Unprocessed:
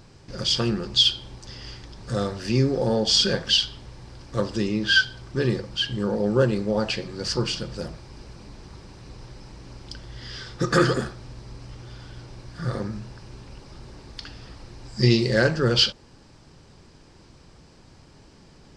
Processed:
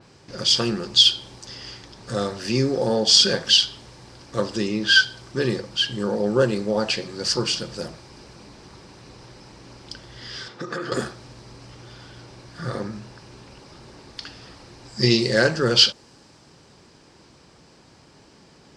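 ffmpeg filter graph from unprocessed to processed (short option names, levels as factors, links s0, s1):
-filter_complex "[0:a]asettb=1/sr,asplit=3[s0][s1][s2];[s0]atrim=end=10.484[s3];[s1]atrim=start=10.48:end=10.92,asetpts=PTS-STARTPTS,afade=t=in:d=0.004:c=qsin,afade=t=out:st=0.436:d=0.004:c=qsin,highpass=170,aemphasis=mode=reproduction:type=50fm,acompressor=threshold=0.0398:ratio=6:attack=3.2:release=140:knee=1:detection=peak[s4];[s2]atrim=start=10.916[s5];[s3][s4]acrossfade=d=0.004:c1=hsin:c2=qsin[s6];[s6][s5]acrossfade=d=0.004:c1=qsin:c2=hsin,highpass=f=210:p=1,adynamicequalizer=threshold=0.0126:dfrequency=4400:dqfactor=0.7:tfrequency=4400:tqfactor=0.7:attack=5:release=100:ratio=0.375:range=2.5:mode=boostabove:tftype=highshelf,volume=1.33"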